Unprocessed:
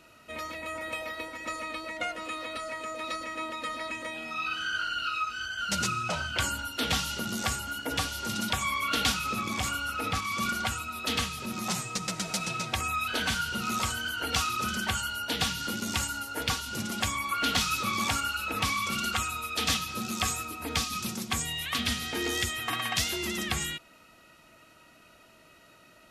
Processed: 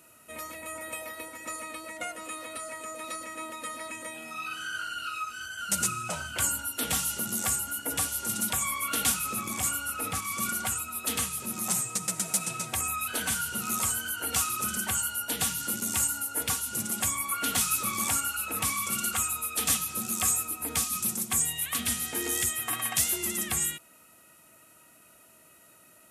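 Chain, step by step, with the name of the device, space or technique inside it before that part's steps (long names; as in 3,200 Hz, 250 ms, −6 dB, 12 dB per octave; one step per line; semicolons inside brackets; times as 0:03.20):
budget condenser microphone (high-pass filter 74 Hz; high shelf with overshoot 6,600 Hz +13 dB, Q 1.5)
level −3 dB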